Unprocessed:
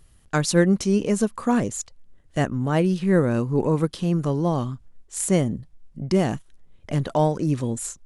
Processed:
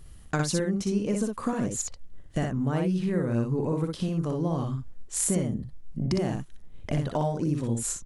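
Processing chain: low shelf 330 Hz +4 dB; compressor 5:1, threshold -28 dBFS, peak gain reduction 16 dB; on a send: early reflections 44 ms -18 dB, 60 ms -3.5 dB; on the sum: gain +2 dB

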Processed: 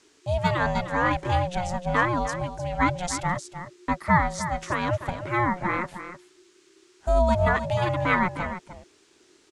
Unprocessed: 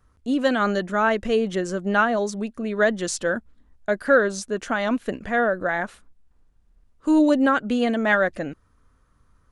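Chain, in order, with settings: ring modulator 360 Hz; echo 0.305 s -11 dB; band noise 980–7900 Hz -63 dBFS

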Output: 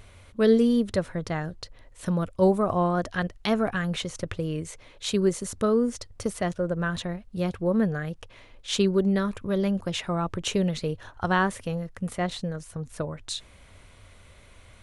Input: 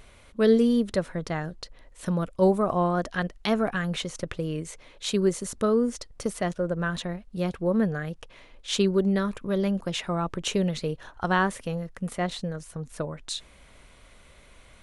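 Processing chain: bell 95 Hz +12.5 dB 0.42 oct

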